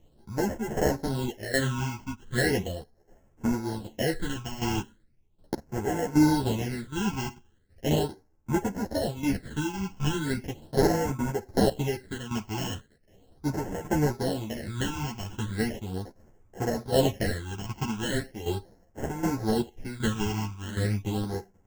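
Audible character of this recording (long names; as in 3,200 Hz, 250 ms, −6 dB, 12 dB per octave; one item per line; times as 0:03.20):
aliases and images of a low sample rate 1,200 Hz, jitter 0%
phaser sweep stages 8, 0.38 Hz, lowest notch 520–4,000 Hz
tremolo saw down 1.3 Hz, depth 75%
a shimmering, thickened sound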